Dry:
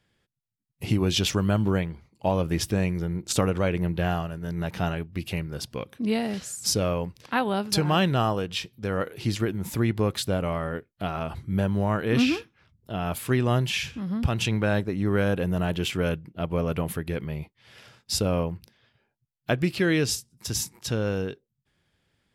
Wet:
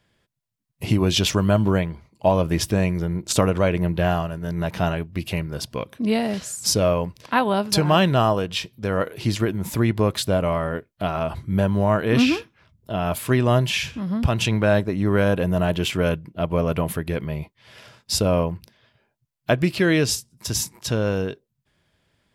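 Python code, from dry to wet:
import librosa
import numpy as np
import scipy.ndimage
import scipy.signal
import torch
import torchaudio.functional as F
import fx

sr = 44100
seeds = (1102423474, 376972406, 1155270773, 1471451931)

y = fx.small_body(x, sr, hz=(630.0, 1000.0), ring_ms=45, db=7)
y = y * librosa.db_to_amplitude(4.0)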